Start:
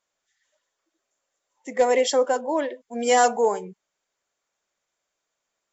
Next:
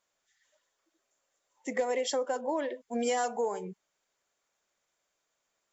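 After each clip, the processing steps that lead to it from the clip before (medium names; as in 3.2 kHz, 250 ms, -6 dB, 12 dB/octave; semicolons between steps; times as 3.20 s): compression 10:1, threshold -27 dBFS, peak gain reduction 13.5 dB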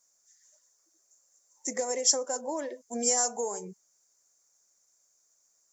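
resonant high shelf 4.4 kHz +11.5 dB, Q 3; trim -2 dB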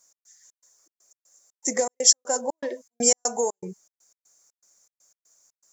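trance gate "x.xx.xx." 120 bpm -60 dB; trim +7.5 dB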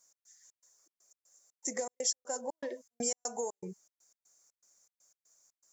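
compression 2:1, threshold -30 dBFS, peak gain reduction 11 dB; trim -6 dB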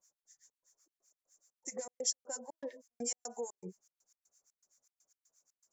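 harmonic tremolo 7.9 Hz, depth 100%, crossover 1 kHz; trim -1 dB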